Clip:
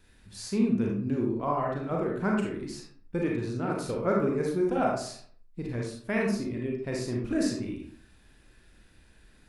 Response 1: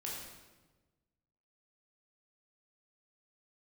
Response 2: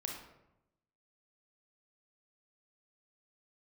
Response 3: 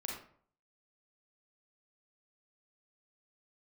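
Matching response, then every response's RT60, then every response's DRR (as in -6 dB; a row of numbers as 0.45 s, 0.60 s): 3; 1.2 s, 0.90 s, 0.55 s; -4.5 dB, 0.5 dB, -1.5 dB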